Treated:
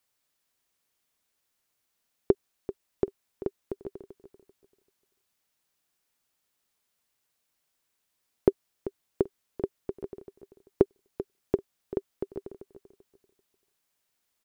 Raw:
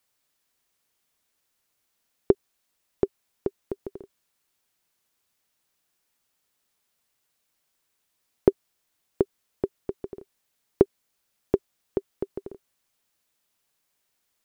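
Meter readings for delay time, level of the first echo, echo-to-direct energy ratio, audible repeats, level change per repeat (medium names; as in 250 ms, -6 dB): 389 ms, -14.0 dB, -13.5 dB, 2, -13.0 dB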